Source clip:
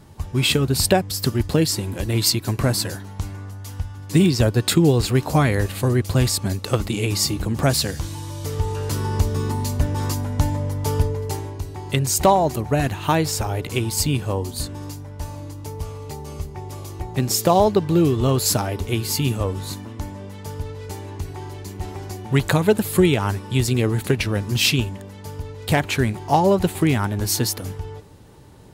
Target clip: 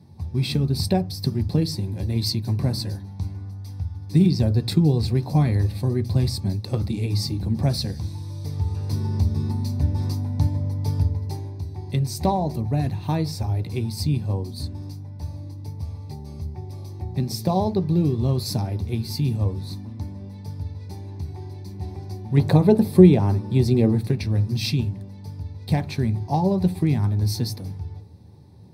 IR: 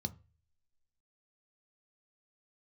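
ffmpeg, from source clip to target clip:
-filter_complex "[0:a]asettb=1/sr,asplit=3[s0][s1][s2];[s0]atrim=end=22.374[s3];[s1]atrim=start=22.37:end=23.98,asetpts=PTS-STARTPTS,afade=t=in:d=0.004:c=qsin,afade=t=out:st=1.606:d=0.004:c=qsin,equalizer=f=470:t=o:w=2.7:g=9[s4];[s2]atrim=start=23.976[s5];[s3][s4]acrossfade=d=0.004:c1=hsin:c2=qsin[s6];[s6][s5]acrossfade=d=0.004:c1=qsin:c2=hsin[s7];[1:a]atrim=start_sample=2205[s8];[s7][s8]afir=irnorm=-1:irlink=0,volume=0.299"

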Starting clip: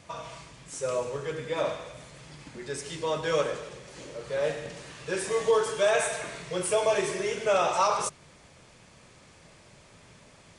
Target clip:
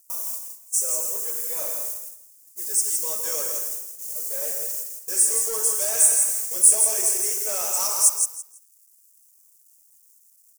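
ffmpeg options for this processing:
-filter_complex "[0:a]asplit=2[s0][s1];[s1]adynamicsmooth=sensitivity=7.5:basefreq=1200,volume=0.708[s2];[s0][s2]amix=inputs=2:normalize=0,acrusher=bits=7:mix=0:aa=0.000001,highpass=290,highshelf=f=9700:g=2.5,agate=range=0.0708:threshold=0.01:ratio=16:detection=peak,highshelf=f=3300:g=9.5,asplit=2[s3][s4];[s4]aecho=0:1:165|330|495:0.473|0.0946|0.0189[s5];[s3][s5]amix=inputs=2:normalize=0,asoftclip=type=hard:threshold=0.178,aexciter=amount=15.1:drive=7:freq=5600,volume=0.188"

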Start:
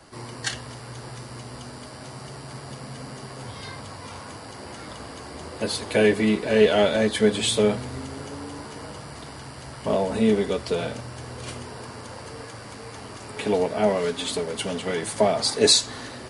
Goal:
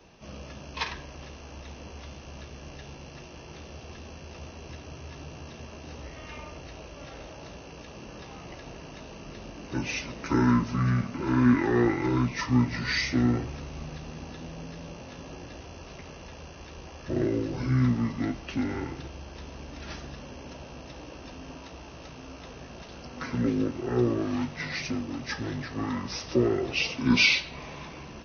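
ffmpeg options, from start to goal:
-af "asetrate=25442,aresample=44100,volume=0.596"

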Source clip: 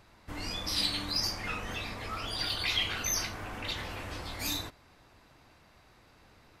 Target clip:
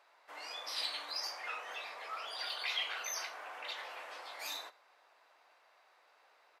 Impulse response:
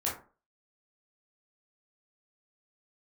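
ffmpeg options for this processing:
-filter_complex "[0:a]highpass=f=560:w=0.5412,highpass=f=560:w=1.3066,highshelf=f=3800:g=-9.5,asplit=2[s0][s1];[s1]adelay=105,volume=0.0794,highshelf=f=4000:g=-2.36[s2];[s0][s2]amix=inputs=2:normalize=0,volume=0.75"

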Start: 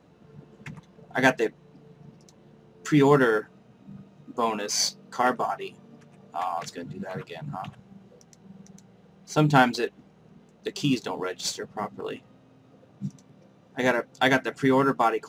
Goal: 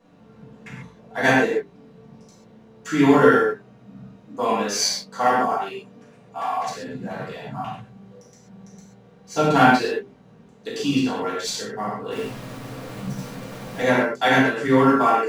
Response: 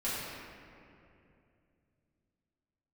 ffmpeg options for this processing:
-filter_complex "[0:a]asettb=1/sr,asplit=3[s0][s1][s2];[s0]atrim=end=12.114[s3];[s1]atrim=start=12.11:end=13.82,asetpts=PTS-STARTPTS,afade=t=in:d=0.004:c=qsin,afade=t=out:st=1.706:d=0.004:c=qsin,aeval=exprs='val(0)+0.5*0.0178*sgn(val(0))':c=same[s4];[s2]atrim=start=13.816[s5];[s3][s4]acrossfade=d=0.004:c1=hsin:c2=qsin[s6];[s6][s5]acrossfade=d=0.004:c1=qsin:c2=hsin,bandreject=f=50:t=h:w=6,bandreject=f=100:t=h:w=6,bandreject=f=150:t=h:w=6,bandreject=f=200:t=h:w=6,bandreject=f=250:t=h:w=6,bandreject=f=300:t=h:w=6,bandreject=f=350:t=h:w=6,bandreject=f=400:t=h:w=6[s7];[1:a]atrim=start_sample=2205,atrim=end_sample=6615[s8];[s7][s8]afir=irnorm=-1:irlink=0"

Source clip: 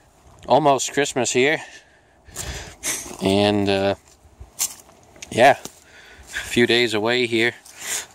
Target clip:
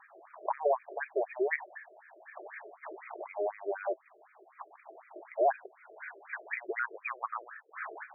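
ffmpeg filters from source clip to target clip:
-filter_complex "[0:a]asettb=1/sr,asplit=3[s0][s1][s2];[s0]atrim=end=6.794[s3];[s1]atrim=start=6.79:end=7.84,asetpts=PTS-STARTPTS,afade=t=in:d=0.004:c=qsin,afade=t=out:st=1.046:d=0.004:c=qsin,lowpass=f=3000:t=q:w=0.5098,lowpass=f=3000:t=q:w=0.6013,lowpass=f=3000:t=q:w=0.9,lowpass=f=3000:t=q:w=2.563,afreqshift=-3500[s4];[s2]atrim=start=7.836[s5];[s3][s4]acrossfade=d=0.004:c1=hsin:c2=qsin[s6];[s6][s5]acrossfade=d=0.004:c1=qsin:c2=hsin,asubboost=boost=7.5:cutoff=190,acompressor=threshold=0.0282:ratio=3,afftfilt=real='re*between(b*sr/1024,460*pow(1800/460,0.5+0.5*sin(2*PI*4*pts/sr))/1.41,460*pow(1800/460,0.5+0.5*sin(2*PI*4*pts/sr))*1.41)':imag='im*between(b*sr/1024,460*pow(1800/460,0.5+0.5*sin(2*PI*4*pts/sr))/1.41,460*pow(1800/460,0.5+0.5*sin(2*PI*4*pts/sr))*1.41)':win_size=1024:overlap=0.75,volume=2.11"

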